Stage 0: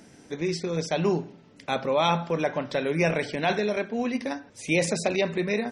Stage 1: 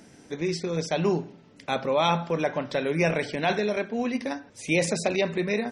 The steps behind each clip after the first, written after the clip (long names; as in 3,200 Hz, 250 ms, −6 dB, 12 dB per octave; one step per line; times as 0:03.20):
no processing that can be heard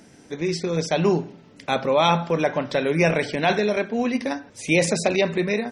automatic gain control gain up to 3 dB
level +1.5 dB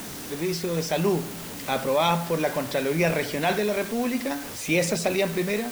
converter with a step at zero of −29.5 dBFS
bit-depth reduction 6 bits, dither triangular
level −4.5 dB